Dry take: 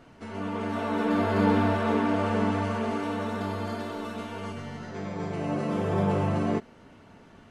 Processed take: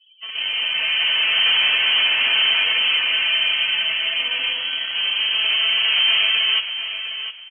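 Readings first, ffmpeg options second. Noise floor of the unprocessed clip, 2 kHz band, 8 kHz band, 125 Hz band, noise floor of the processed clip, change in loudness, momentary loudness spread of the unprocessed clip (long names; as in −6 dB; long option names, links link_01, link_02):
−53 dBFS, +18.0 dB, below −30 dB, below −25 dB, −39 dBFS, +11.5 dB, 12 LU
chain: -filter_complex "[0:a]afftdn=noise_reduction=35:noise_floor=-43,aecho=1:1:4.6:0.59,dynaudnorm=framelen=590:gausssize=5:maxgain=5dB,asplit=2[link_01][link_02];[link_02]acrusher=bits=4:mix=0:aa=0.000001,volume=-5dB[link_03];[link_01][link_03]amix=inputs=2:normalize=0,asoftclip=type=tanh:threshold=-18.5dB,aecho=1:1:706|1412|2118:0.316|0.0696|0.0153,lowpass=frequency=2800:width_type=q:width=0.5098,lowpass=frequency=2800:width_type=q:width=0.6013,lowpass=frequency=2800:width_type=q:width=0.9,lowpass=frequency=2800:width_type=q:width=2.563,afreqshift=-3300,volume=3.5dB"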